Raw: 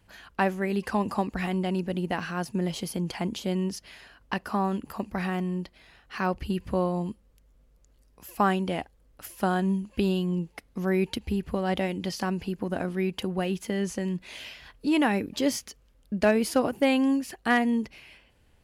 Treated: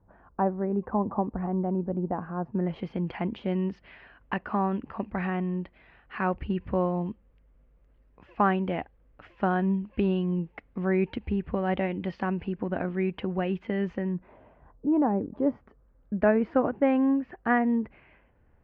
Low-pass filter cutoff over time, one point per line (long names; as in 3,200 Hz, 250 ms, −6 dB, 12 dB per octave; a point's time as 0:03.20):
low-pass filter 24 dB per octave
0:02.41 1,100 Hz
0:02.84 2,500 Hz
0:13.93 2,500 Hz
0:14.39 1,000 Hz
0:15.20 1,000 Hz
0:16.20 1,800 Hz